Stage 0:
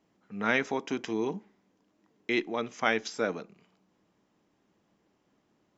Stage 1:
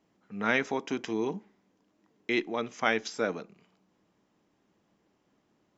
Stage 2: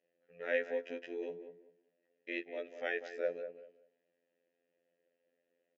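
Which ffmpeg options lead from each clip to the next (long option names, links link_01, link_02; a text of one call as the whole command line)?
ffmpeg -i in.wav -af anull out.wav
ffmpeg -i in.wav -filter_complex "[0:a]afftfilt=real='hypot(re,im)*cos(PI*b)':imag='0':win_size=2048:overlap=0.75,asplit=3[link_01][link_02][link_03];[link_01]bandpass=frequency=530:width_type=q:width=8,volume=0dB[link_04];[link_02]bandpass=frequency=1840:width_type=q:width=8,volume=-6dB[link_05];[link_03]bandpass=frequency=2480:width_type=q:width=8,volume=-9dB[link_06];[link_04][link_05][link_06]amix=inputs=3:normalize=0,asplit=2[link_07][link_08];[link_08]adelay=193,lowpass=frequency=1200:poles=1,volume=-9dB,asplit=2[link_09][link_10];[link_10]adelay=193,lowpass=frequency=1200:poles=1,volume=0.25,asplit=2[link_11][link_12];[link_12]adelay=193,lowpass=frequency=1200:poles=1,volume=0.25[link_13];[link_07][link_09][link_11][link_13]amix=inputs=4:normalize=0,volume=5.5dB" out.wav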